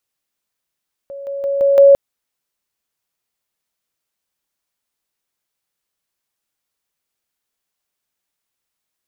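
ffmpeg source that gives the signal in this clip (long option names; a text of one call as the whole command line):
ffmpeg -f lavfi -i "aevalsrc='pow(10,(-28+6*floor(t/0.17))/20)*sin(2*PI*557*t)':duration=0.85:sample_rate=44100" out.wav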